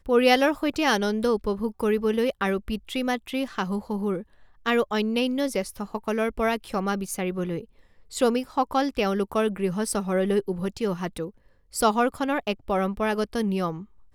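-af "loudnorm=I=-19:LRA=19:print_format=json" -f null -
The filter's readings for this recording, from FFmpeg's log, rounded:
"input_i" : "-25.9",
"input_tp" : "-6.9",
"input_lra" : "1.7",
"input_thresh" : "-36.2",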